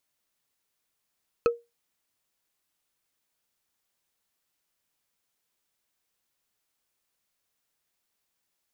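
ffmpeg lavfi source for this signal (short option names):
-f lavfi -i "aevalsrc='0.178*pow(10,-3*t/0.22)*sin(2*PI*471*t)+0.0891*pow(10,-3*t/0.065)*sin(2*PI*1298.5*t)+0.0447*pow(10,-3*t/0.029)*sin(2*PI*2545.3*t)+0.0224*pow(10,-3*t/0.016)*sin(2*PI*4207.4*t)+0.0112*pow(10,-3*t/0.01)*sin(2*PI*6283.1*t)':d=0.45:s=44100"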